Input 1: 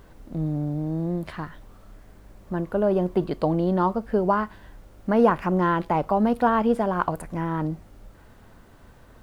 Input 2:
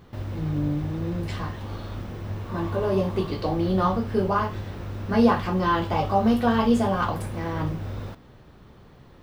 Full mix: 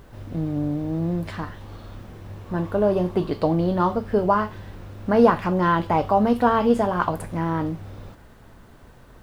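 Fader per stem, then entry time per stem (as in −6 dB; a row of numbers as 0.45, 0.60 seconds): +1.5, −6.0 decibels; 0.00, 0.00 seconds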